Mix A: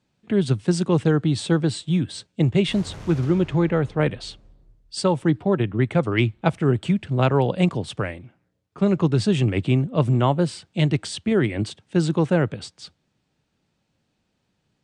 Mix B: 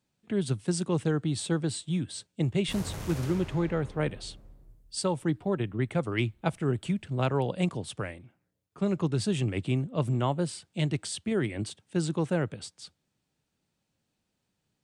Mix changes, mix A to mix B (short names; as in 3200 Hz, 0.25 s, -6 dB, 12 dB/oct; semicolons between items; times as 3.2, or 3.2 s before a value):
speech -8.5 dB; master: remove air absorption 72 m